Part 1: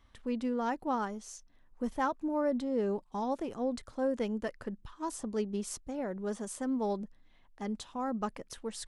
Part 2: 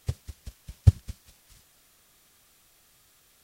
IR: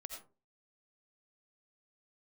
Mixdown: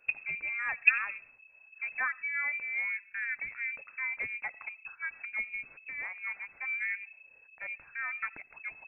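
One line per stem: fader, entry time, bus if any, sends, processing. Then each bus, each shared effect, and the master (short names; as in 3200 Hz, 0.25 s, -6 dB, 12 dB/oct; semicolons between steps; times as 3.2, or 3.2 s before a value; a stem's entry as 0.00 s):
-1.0 dB, 0.00 s, send -14 dB, bell 160 Hz -12 dB 0.73 oct
-3.0 dB, 0.00 s, send -4.5 dB, gate -46 dBFS, range -13 dB; auto duck -11 dB, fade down 0.30 s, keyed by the first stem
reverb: on, RT60 0.35 s, pre-delay 45 ms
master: bell 540 Hz -6 dB 0.22 oct; inverted band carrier 2600 Hz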